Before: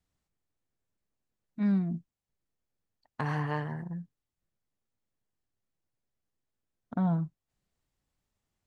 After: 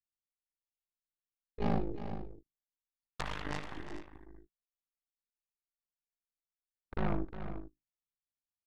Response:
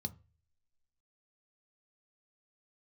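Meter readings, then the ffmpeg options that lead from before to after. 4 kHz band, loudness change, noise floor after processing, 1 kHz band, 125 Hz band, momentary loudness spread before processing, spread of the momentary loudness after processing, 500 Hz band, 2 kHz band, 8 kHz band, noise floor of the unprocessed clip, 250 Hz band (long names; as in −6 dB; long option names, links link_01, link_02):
+5.5 dB, −7.5 dB, below −85 dBFS, −3.0 dB, −8.5 dB, 13 LU, 21 LU, +1.0 dB, −3.0 dB, can't be measured, below −85 dBFS, −8.5 dB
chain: -filter_complex "[0:a]bandreject=frequency=50:width_type=h:width=6,bandreject=frequency=100:width_type=h:width=6,bandreject=frequency=150:width_type=h:width=6,aeval=exprs='val(0)*sin(2*PI*26*n/s)':channel_layout=same,equalizer=frequency=460:width_type=o:width=1.8:gain=-4.5,aeval=exprs='0.0841*(cos(1*acos(clip(val(0)/0.0841,-1,1)))-cos(1*PI/2))+0.0266*(cos(3*acos(clip(val(0)/0.0841,-1,1)))-cos(3*PI/2))+0.0211*(cos(6*acos(clip(val(0)/0.0841,-1,1)))-cos(6*PI/2))':channel_layout=same,asplit=2[link_01][link_02];[link_02]aecho=0:1:64|357|434:0.126|0.266|0.211[link_03];[link_01][link_03]amix=inputs=2:normalize=0,volume=1dB"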